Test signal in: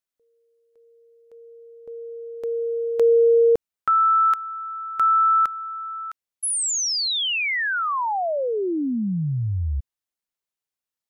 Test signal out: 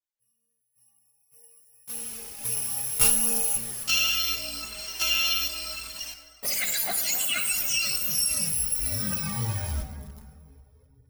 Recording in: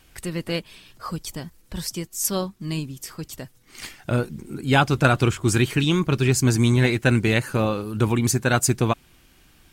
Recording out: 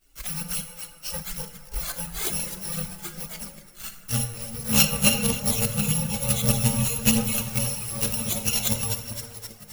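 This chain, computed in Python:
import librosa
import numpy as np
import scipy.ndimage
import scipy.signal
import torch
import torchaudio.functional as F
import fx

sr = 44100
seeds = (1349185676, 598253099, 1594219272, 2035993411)

p1 = fx.bit_reversed(x, sr, seeds[0], block=128)
p2 = fx.high_shelf(p1, sr, hz=8300.0, db=3.0)
p3 = p2 + fx.echo_split(p2, sr, split_hz=450.0, low_ms=397, high_ms=260, feedback_pct=52, wet_db=-9.5, dry=0)
p4 = fx.dereverb_blind(p3, sr, rt60_s=1.5)
p5 = fx.env_flanger(p4, sr, rest_ms=8.2, full_db=-19.0)
p6 = fx.quant_companded(p5, sr, bits=2)
p7 = p5 + F.gain(torch.from_numpy(p6), -4.0).numpy()
p8 = fx.rev_plate(p7, sr, seeds[1], rt60_s=1.9, hf_ratio=0.45, predelay_ms=0, drr_db=5.5)
p9 = fx.chorus_voices(p8, sr, voices=4, hz=0.26, base_ms=17, depth_ms=3.0, mix_pct=70)
y = F.gain(torch.from_numpy(p9), -2.5).numpy()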